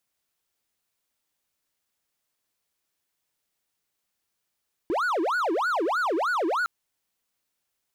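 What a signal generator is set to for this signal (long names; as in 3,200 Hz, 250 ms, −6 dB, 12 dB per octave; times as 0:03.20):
siren wail 317–1,480 Hz 3.2 per second triangle −20.5 dBFS 1.76 s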